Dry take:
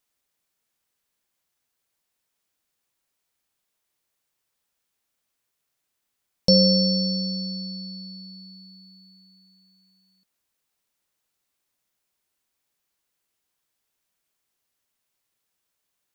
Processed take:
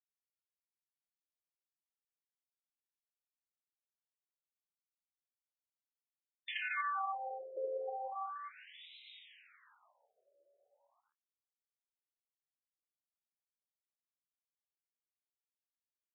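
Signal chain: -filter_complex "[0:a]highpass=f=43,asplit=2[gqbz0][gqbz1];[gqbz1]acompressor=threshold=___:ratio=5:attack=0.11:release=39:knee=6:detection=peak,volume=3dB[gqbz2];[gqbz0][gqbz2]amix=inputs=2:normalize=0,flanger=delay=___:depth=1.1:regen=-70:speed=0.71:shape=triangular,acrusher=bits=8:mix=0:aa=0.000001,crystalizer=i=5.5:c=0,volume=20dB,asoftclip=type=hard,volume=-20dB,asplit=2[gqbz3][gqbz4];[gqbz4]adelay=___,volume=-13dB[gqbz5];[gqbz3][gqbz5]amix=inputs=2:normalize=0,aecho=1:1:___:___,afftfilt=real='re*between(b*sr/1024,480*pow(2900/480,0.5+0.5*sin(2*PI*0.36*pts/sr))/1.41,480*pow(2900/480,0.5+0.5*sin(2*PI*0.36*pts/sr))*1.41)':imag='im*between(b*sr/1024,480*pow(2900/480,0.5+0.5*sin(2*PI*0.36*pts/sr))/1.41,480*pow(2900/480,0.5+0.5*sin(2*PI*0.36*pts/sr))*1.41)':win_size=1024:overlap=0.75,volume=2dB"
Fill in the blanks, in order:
-29dB, 4.5, 26, 1086, 0.668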